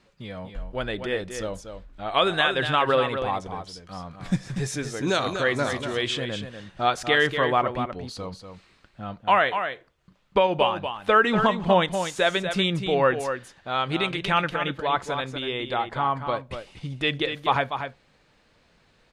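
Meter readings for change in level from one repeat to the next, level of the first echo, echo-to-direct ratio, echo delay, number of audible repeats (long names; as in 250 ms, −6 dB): repeats not evenly spaced, −8.0 dB, −8.0 dB, 241 ms, 1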